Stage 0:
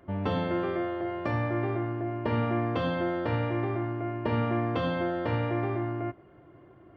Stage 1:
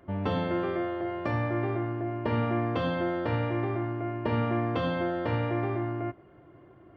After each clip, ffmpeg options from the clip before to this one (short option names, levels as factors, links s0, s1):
-af anull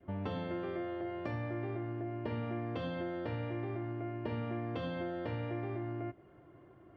-af "adynamicequalizer=threshold=0.00447:dfrequency=1100:dqfactor=1.4:tfrequency=1100:tqfactor=1.4:attack=5:release=100:ratio=0.375:range=2.5:mode=cutabove:tftype=bell,acompressor=threshold=0.0282:ratio=3,volume=0.596"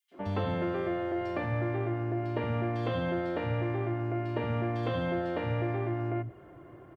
-filter_complex "[0:a]asplit=2[s0][s1];[s1]asoftclip=type=hard:threshold=0.0126,volume=0.355[s2];[s0][s2]amix=inputs=2:normalize=0,acrossover=split=210|4000[s3][s4][s5];[s4]adelay=110[s6];[s3]adelay=180[s7];[s7][s6][s5]amix=inputs=3:normalize=0,volume=2"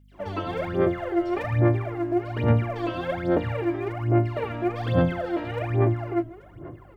-af "aphaser=in_gain=1:out_gain=1:delay=3.1:decay=0.79:speed=1.2:type=sinusoidal,aeval=exprs='val(0)+0.00224*(sin(2*PI*50*n/s)+sin(2*PI*2*50*n/s)/2+sin(2*PI*3*50*n/s)/3+sin(2*PI*4*50*n/s)/4+sin(2*PI*5*50*n/s)/5)':c=same"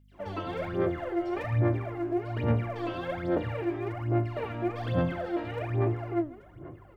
-filter_complex "[0:a]flanger=delay=8.5:depth=7.8:regen=80:speed=1.3:shape=sinusoidal,asplit=2[s0][s1];[s1]asoftclip=type=tanh:threshold=0.0299,volume=0.316[s2];[s0][s2]amix=inputs=2:normalize=0,volume=0.794"